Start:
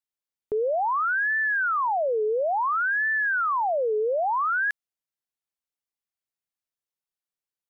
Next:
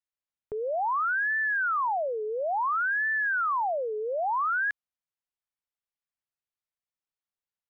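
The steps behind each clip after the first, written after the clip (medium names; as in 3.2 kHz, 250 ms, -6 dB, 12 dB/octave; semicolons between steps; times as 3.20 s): low-pass 2.1 kHz 6 dB/octave; peaking EQ 330 Hz -9 dB 1.6 oct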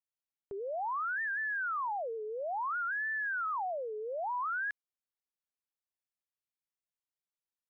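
warped record 78 rpm, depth 160 cents; trim -7.5 dB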